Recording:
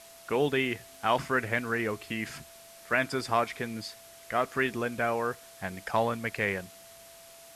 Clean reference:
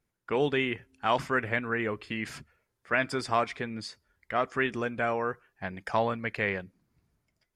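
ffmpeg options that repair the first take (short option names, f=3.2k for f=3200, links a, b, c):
-af "adeclick=t=4,bandreject=f=670:w=30,afwtdn=0.0028"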